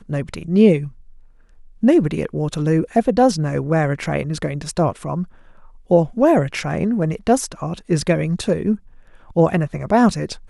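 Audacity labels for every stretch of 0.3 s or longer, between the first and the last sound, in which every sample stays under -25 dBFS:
0.870000	1.830000	silence
5.240000	5.910000	silence
8.750000	9.360000	silence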